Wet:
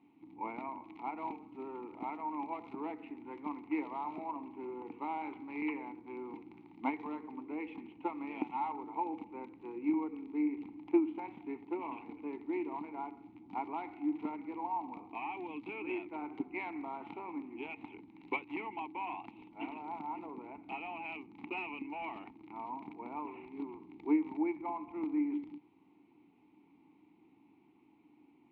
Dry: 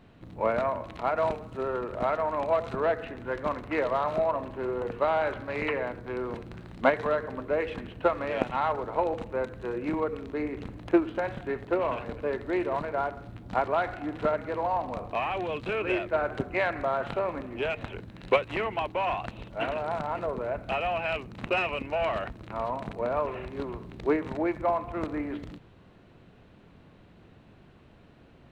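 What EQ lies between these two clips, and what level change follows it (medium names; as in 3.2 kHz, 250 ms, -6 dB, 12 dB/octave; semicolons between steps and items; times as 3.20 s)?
vowel filter u; bass shelf 130 Hz -7.5 dB; +3.0 dB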